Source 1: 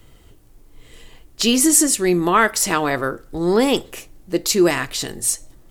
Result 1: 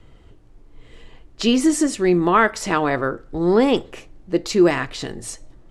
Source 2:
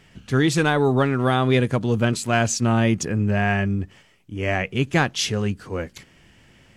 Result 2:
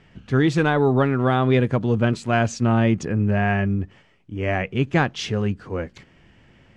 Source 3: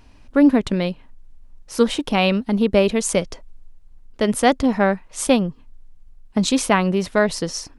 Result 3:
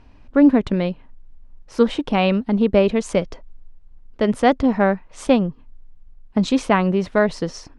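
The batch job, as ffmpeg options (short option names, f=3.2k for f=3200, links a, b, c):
-af "lowpass=10k,aemphasis=mode=reproduction:type=75fm"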